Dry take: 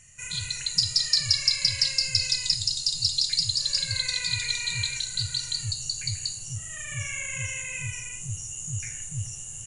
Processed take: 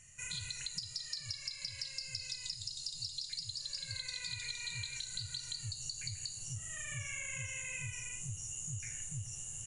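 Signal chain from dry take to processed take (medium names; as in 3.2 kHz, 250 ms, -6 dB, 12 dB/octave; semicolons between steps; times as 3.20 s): compression 10:1, threshold -32 dBFS, peak gain reduction 16.5 dB; trim -5.5 dB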